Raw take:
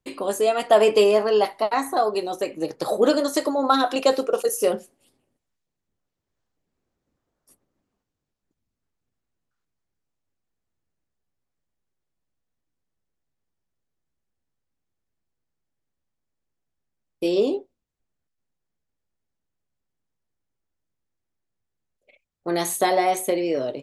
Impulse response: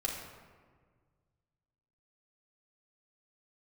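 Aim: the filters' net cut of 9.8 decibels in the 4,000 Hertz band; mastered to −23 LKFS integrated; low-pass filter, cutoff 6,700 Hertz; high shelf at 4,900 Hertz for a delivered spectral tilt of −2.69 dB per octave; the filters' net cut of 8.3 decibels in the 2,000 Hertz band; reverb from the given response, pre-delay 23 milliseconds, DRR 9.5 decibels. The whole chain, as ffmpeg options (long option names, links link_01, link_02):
-filter_complex "[0:a]lowpass=6700,equalizer=frequency=2000:width_type=o:gain=-8,equalizer=frequency=4000:width_type=o:gain=-5.5,highshelf=frequency=4900:gain=-8,asplit=2[link_01][link_02];[1:a]atrim=start_sample=2205,adelay=23[link_03];[link_02][link_03]afir=irnorm=-1:irlink=0,volume=-13dB[link_04];[link_01][link_04]amix=inputs=2:normalize=0,volume=-1dB"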